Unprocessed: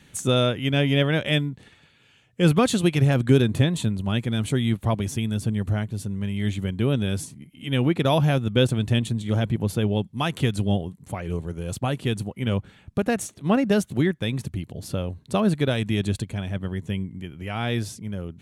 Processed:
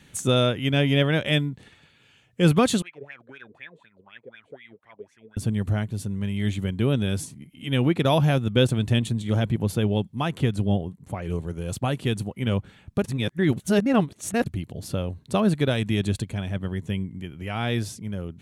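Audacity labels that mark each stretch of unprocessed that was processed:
2.820000	5.370000	wah 4 Hz 430–2300 Hz, Q 11
10.150000	11.220000	high shelf 2100 Hz -7 dB
13.040000	14.460000	reverse

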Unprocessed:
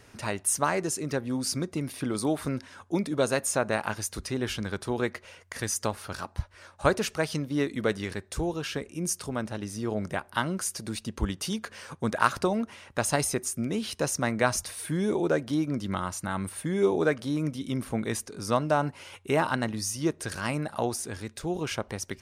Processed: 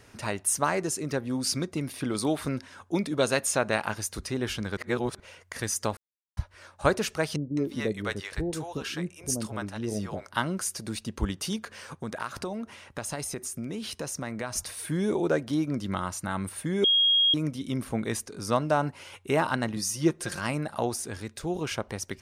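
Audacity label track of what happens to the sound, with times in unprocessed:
1.320000	3.850000	dynamic EQ 3200 Hz, up to +5 dB, over -44 dBFS, Q 0.82
4.770000	5.200000	reverse
5.970000	6.370000	mute
7.360000	10.310000	bands offset in time lows, highs 0.21 s, split 580 Hz
11.560000	14.560000	compressor 3:1, threshold -32 dBFS
16.840000	17.340000	bleep 3270 Hz -18.5 dBFS
19.760000	20.390000	comb 5.7 ms, depth 62%

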